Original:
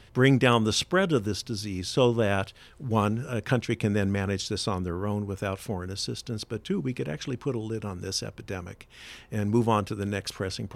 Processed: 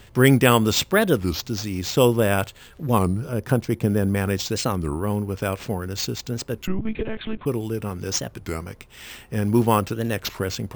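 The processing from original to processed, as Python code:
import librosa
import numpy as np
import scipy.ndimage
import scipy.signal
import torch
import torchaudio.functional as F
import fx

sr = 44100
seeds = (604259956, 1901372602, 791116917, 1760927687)

y = fx.peak_eq(x, sr, hz=2800.0, db=-11.5, octaves=1.7, at=(3.01, 4.15))
y = np.repeat(y[::4], 4)[:len(y)]
y = fx.lpc_monotone(y, sr, seeds[0], pitch_hz=220.0, order=10, at=(6.69, 7.46))
y = fx.record_warp(y, sr, rpm=33.33, depth_cents=250.0)
y = y * 10.0 ** (5.0 / 20.0)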